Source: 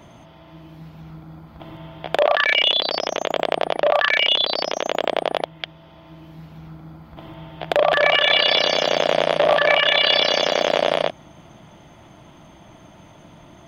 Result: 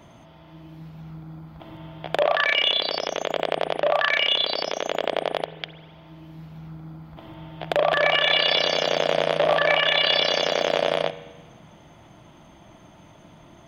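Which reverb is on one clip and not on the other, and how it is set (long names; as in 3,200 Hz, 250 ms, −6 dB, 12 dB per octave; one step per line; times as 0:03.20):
spring reverb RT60 1.3 s, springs 44 ms, chirp 40 ms, DRR 12 dB
level −3.5 dB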